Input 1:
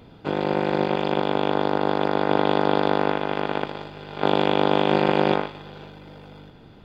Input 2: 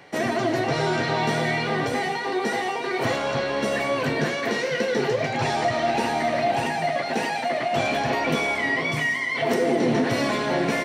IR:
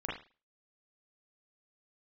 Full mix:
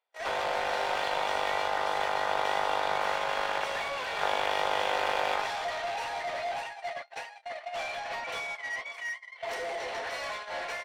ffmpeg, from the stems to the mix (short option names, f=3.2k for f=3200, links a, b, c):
-filter_complex "[0:a]acompressor=threshold=-26dB:ratio=1.5,volume=2.5dB[a];[1:a]aeval=exprs='val(0)+0.01*(sin(2*PI*50*n/s)+sin(2*PI*2*50*n/s)/2+sin(2*PI*3*50*n/s)/3+sin(2*PI*4*50*n/s)/4+sin(2*PI*5*50*n/s)/5)':c=same,volume=-10.5dB[b];[a][b]amix=inputs=2:normalize=0,agate=range=-42dB:threshold=-33dB:ratio=16:detection=peak,highpass=f=570:w=0.5412,highpass=f=570:w=1.3066,asplit=2[c][d];[d]highpass=f=720:p=1,volume=15dB,asoftclip=type=tanh:threshold=-28.5dB[e];[c][e]amix=inputs=2:normalize=0,lowpass=f=4.8k:p=1,volume=-6dB"